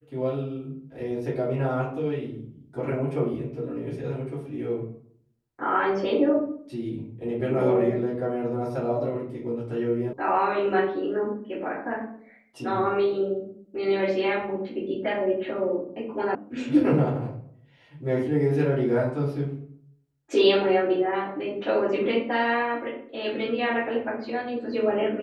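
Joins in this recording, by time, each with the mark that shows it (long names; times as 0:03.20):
0:10.13: cut off before it has died away
0:16.35: cut off before it has died away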